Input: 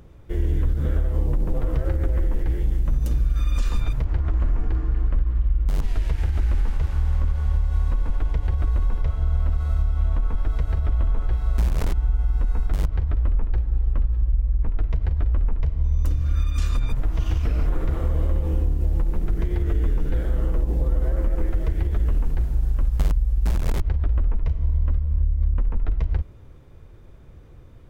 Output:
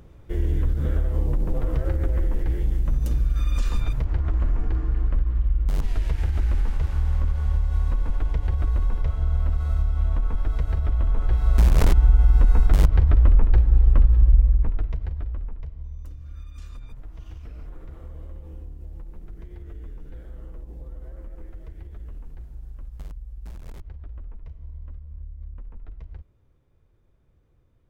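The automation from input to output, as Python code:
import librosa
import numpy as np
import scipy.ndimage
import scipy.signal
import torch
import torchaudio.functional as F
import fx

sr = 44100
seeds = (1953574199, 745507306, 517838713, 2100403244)

y = fx.gain(x, sr, db=fx.line((11.0, -1.0), (11.81, 6.0), (14.4, 6.0), (14.97, -5.5), (16.1, -17.0)))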